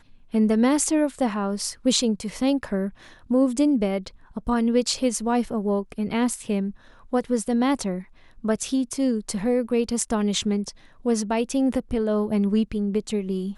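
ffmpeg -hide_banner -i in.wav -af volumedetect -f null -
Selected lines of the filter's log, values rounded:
mean_volume: -23.9 dB
max_volume: -5.7 dB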